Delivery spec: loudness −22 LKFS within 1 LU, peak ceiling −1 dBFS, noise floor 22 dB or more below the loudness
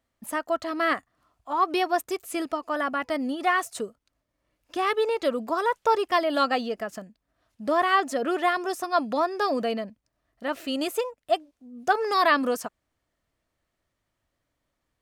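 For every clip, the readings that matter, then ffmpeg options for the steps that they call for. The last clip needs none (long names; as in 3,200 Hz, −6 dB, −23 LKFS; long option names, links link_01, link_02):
integrated loudness −26.5 LKFS; sample peak −7.5 dBFS; target loudness −22.0 LKFS
→ -af "volume=4.5dB"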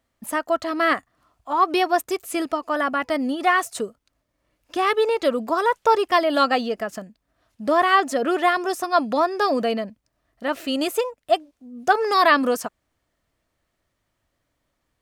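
integrated loudness −22.0 LKFS; sample peak −3.0 dBFS; background noise floor −76 dBFS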